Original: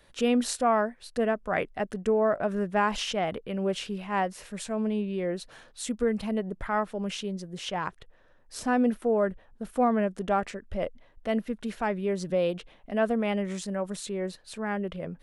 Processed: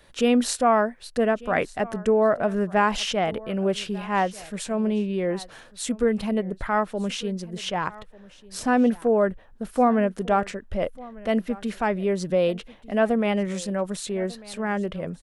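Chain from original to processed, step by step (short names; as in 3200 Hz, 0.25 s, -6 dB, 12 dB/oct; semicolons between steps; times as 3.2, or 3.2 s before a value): echo 1.195 s -21 dB; gain +4.5 dB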